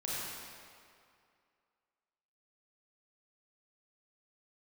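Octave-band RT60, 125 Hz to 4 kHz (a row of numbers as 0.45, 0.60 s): 2.1, 2.2, 2.3, 2.4, 2.1, 1.7 s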